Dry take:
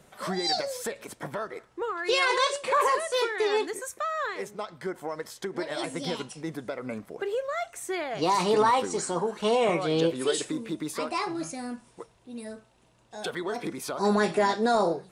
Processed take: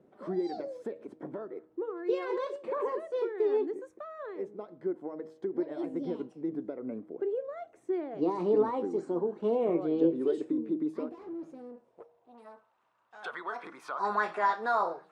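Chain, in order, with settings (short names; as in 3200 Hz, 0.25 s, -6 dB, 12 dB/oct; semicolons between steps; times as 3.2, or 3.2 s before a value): 11.09–13.23 tube stage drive 39 dB, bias 0.7; band-pass sweep 320 Hz -> 1200 Hz, 11.31–12.82; de-hum 158.3 Hz, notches 5; gain +3.5 dB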